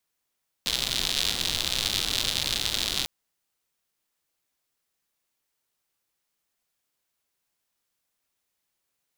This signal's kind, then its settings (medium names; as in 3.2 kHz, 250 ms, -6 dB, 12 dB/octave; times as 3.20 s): rain from filtered ticks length 2.40 s, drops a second 130, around 3.7 kHz, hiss -8 dB